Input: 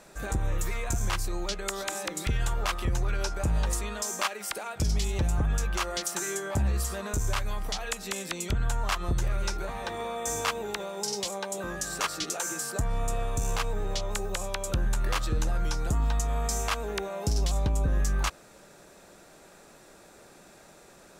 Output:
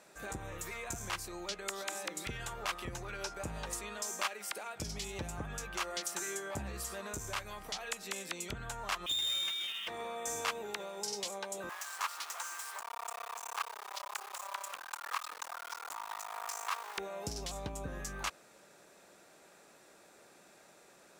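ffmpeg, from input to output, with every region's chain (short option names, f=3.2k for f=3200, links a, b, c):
-filter_complex "[0:a]asettb=1/sr,asplit=3[a][b][c];[a]atrim=end=9.064[d];[b]atrim=start=9.06:end=9.88,asetpts=PTS-STARTPTS,afade=t=in:d=0.004:c=qsin,afade=t=out:st=0.816:d=0.004:c=qsin,lowpass=f=3.1k:t=q:w=0.5098,lowpass=f=3.1k:t=q:w=0.6013,lowpass=f=3.1k:t=q:w=0.9,lowpass=f=3.1k:t=q:w=2.563,afreqshift=-3700,aeval=exprs='clip(val(0),-1,0.0282)':c=same,acrusher=bits=3:mode=log:mix=0:aa=0.000001[e];[c]atrim=start=9.876[f];[d][e]acrossfade=d=0.004:c1=hsin:c2=qsin[g];[g][f]acrossfade=d=0.004:c1=qsin:c2=hsin,asettb=1/sr,asplit=3[h][i][j];[h]atrim=end=11.694[k];[i]atrim=start=11.69:end=16.98,asetpts=PTS-STARTPTS,afade=t=in:d=0.004:c=qsin,afade=t=out:st=5.286:d=0.004:c=qsin,acrusher=bits=4:dc=4:mix=0:aa=0.000001,highpass=f=1k:t=q:w=2.9[l];[j]atrim=start=16.976[m];[k][l]acrossfade=d=0.004:c1=hsin:c2=qsin[n];[n][m]acrossfade=d=0.004:c1=qsin:c2=hsin,highpass=f=260:p=1,equalizer=f=2.3k:t=o:w=0.77:g=2,volume=-6.5dB"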